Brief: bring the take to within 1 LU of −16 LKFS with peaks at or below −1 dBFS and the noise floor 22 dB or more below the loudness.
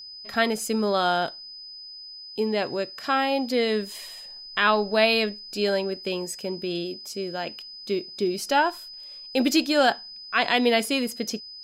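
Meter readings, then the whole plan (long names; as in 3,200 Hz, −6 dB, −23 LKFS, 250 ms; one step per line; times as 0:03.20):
interfering tone 5,000 Hz; level of the tone −39 dBFS; integrated loudness −25.0 LKFS; sample peak −8.5 dBFS; target loudness −16.0 LKFS
→ notch filter 5,000 Hz, Q 30
level +9 dB
brickwall limiter −1 dBFS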